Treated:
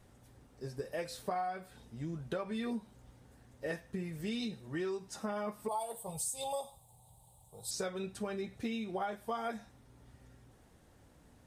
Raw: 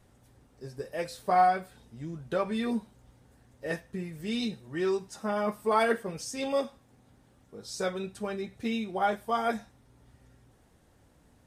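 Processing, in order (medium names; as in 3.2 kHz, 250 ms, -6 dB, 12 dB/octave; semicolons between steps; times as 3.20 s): 5.68–7.71 s: FFT filter 150 Hz 0 dB, 260 Hz -22 dB, 880 Hz +6 dB, 1.6 kHz -29 dB, 3.8 kHz +2 dB, 5.6 kHz -9 dB, 8.1 kHz +13 dB; compression 8:1, threshold -34 dBFS, peak gain reduction 15.5 dB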